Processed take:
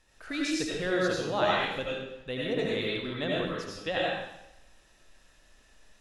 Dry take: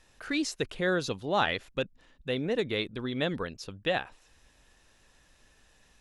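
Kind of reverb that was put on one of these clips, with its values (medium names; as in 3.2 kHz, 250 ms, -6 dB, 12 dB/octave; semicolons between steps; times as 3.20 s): algorithmic reverb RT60 0.85 s, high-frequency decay 0.95×, pre-delay 50 ms, DRR -5 dB; trim -5 dB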